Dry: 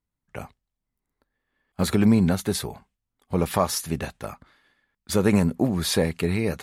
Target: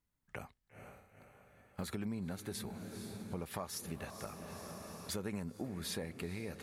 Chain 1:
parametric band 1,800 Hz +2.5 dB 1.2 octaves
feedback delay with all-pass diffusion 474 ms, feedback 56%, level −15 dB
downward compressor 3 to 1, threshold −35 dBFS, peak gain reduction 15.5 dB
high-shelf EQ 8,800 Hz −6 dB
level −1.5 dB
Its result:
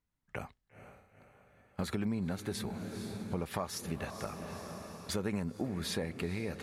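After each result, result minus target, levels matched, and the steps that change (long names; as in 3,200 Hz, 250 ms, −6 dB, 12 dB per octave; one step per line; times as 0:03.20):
downward compressor: peak gain reduction −5.5 dB; 8,000 Hz band −3.5 dB
change: downward compressor 3 to 1, threshold −43.5 dBFS, peak gain reduction 21.5 dB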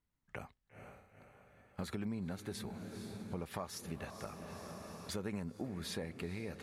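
8,000 Hz band −3.5 dB
change: high-shelf EQ 8,800 Hz +3.5 dB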